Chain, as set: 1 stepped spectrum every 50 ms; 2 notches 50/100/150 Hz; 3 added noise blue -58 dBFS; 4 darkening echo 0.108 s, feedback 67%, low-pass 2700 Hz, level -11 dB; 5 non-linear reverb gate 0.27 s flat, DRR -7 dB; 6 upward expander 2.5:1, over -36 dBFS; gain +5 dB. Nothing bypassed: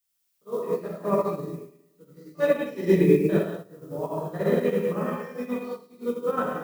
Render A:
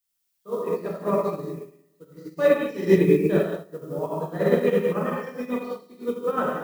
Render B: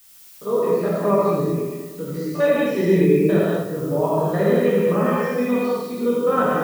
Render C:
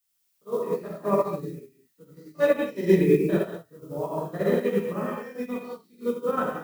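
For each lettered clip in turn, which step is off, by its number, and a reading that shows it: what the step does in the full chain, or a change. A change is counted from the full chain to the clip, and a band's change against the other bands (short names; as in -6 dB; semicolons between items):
1, 125 Hz band -1.5 dB; 6, crest factor change -4.5 dB; 4, 125 Hz band -2.0 dB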